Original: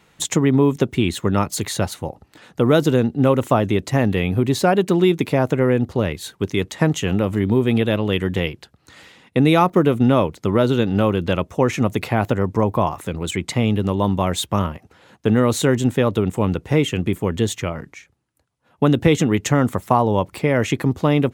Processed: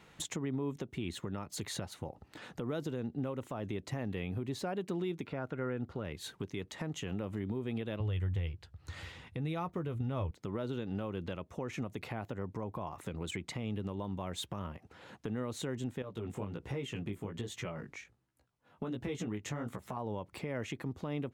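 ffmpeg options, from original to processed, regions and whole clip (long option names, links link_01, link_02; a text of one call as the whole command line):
ffmpeg -i in.wav -filter_complex "[0:a]asettb=1/sr,asplit=3[link_01][link_02][link_03];[link_01]atrim=end=5.254[link_04];[link_02]atrim=start=5.25:end=6.04,asetpts=PTS-STARTPTS,afade=type=in:duration=0.004:curve=qsin,afade=type=out:start_time=0.786:duration=0.004:curve=qsin,acrossover=split=4400[link_05][link_06];[link_06]acompressor=threshold=-59dB:ratio=4:attack=1:release=60[link_07];[link_05][link_07]amix=inputs=2:normalize=0,equalizer=frequency=1400:width_type=o:width=0.24:gain=11[link_08];[link_03]atrim=start=6.036[link_09];[link_04][link_08]acrossfade=duration=0.004:curve1=hsin:curve2=qsin[link_10];[link_10][link_09]acrossfade=duration=0.004:curve1=qsin:curve2=hsin,asettb=1/sr,asplit=3[link_11][link_12][link_13];[link_11]atrim=end=8.004[link_14];[link_12]atrim=start=8:end=10.31,asetpts=PTS-STARTPTS,afade=type=in:duration=0.004:curve=qsin,afade=type=out:start_time=2.306:duration=0.004:curve=qsin,lowshelf=frequency=140:width_type=q:width=1.5:gain=13,asplit=2[link_15][link_16];[link_16]adelay=12,volume=-10.5dB[link_17];[link_15][link_17]amix=inputs=2:normalize=0,atrim=end_sample=101871[link_18];[link_13]atrim=start=10.306[link_19];[link_14][link_18]acrossfade=duration=0.004:curve1=hsin:curve2=qsin[link_20];[link_20][link_19]acrossfade=duration=0.004:curve1=qsin:curve2=hsin,asettb=1/sr,asplit=3[link_21][link_22][link_23];[link_21]atrim=end=16.024[link_24];[link_22]atrim=start=16.02:end=19.97,asetpts=PTS-STARTPTS,afade=type=in:duration=0.004:curve=qsin,afade=type=out:start_time=3.946:duration=0.004:curve=qsin,acompressor=threshold=-30dB:ratio=1.5:attack=3.2:release=140:knee=1:detection=peak,flanger=delay=15:depth=5.1:speed=1.3[link_25];[link_23]atrim=start=19.966[link_26];[link_24][link_25]acrossfade=duration=0.004:curve1=hsin:curve2=qsin[link_27];[link_27][link_26]acrossfade=duration=0.004:curve1=qsin:curve2=hsin,highshelf=frequency=7100:gain=-7,acompressor=threshold=-35dB:ratio=2.5,alimiter=limit=-24dB:level=0:latency=1:release=154,volume=-3dB" out.wav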